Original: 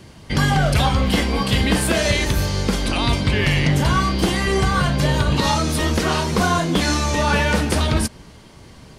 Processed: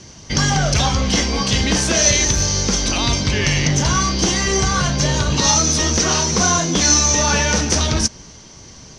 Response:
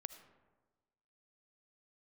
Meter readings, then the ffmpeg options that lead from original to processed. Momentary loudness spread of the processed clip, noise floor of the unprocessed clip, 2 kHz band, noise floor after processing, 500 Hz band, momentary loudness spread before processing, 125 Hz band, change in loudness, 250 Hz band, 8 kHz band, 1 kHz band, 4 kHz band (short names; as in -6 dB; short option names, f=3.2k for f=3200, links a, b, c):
5 LU, -44 dBFS, +0.5 dB, -41 dBFS, -0.5 dB, 3 LU, -0.5 dB, +3.0 dB, -0.5 dB, +14.0 dB, -0.5 dB, +5.0 dB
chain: -af "acontrast=60,lowpass=f=6k:t=q:w=10,volume=-6dB"